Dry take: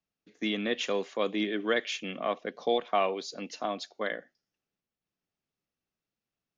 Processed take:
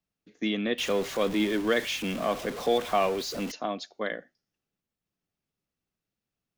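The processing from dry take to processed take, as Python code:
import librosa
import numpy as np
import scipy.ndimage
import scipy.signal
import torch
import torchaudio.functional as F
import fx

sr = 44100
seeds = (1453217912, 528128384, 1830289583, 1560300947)

y = fx.zero_step(x, sr, step_db=-34.0, at=(0.78, 3.52))
y = fx.low_shelf(y, sr, hz=240.0, db=6.5)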